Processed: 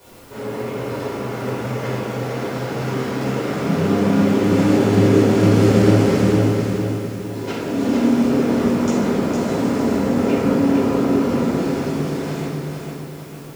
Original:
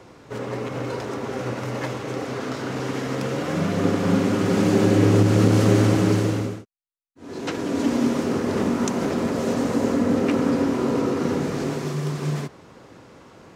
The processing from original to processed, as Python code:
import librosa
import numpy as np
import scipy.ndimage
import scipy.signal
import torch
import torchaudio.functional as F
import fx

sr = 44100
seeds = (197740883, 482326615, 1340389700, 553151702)

p1 = fx.quant_dither(x, sr, seeds[0], bits=6, dither='triangular')
p2 = x + (p1 * 10.0 ** (-10.5 / 20.0))
p3 = fx.echo_feedback(p2, sr, ms=457, feedback_pct=45, wet_db=-5.0)
p4 = fx.room_shoebox(p3, sr, seeds[1], volume_m3=390.0, walls='mixed', distance_m=4.9)
y = p4 * 10.0 ** (-13.0 / 20.0)